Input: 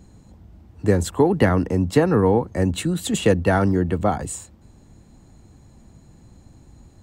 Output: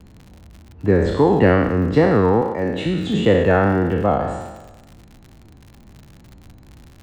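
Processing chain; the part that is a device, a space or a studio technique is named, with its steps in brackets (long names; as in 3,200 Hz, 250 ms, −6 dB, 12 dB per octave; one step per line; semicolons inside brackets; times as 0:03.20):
peak hold with a decay on every bin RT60 1.19 s
0:02.41–0:02.86: high-pass filter 290 Hz 6 dB per octave
lo-fi chain (low-pass filter 3,200 Hz 12 dB per octave; tape wow and flutter; surface crackle 85 per second −31 dBFS)
high-shelf EQ 5,500 Hz −7 dB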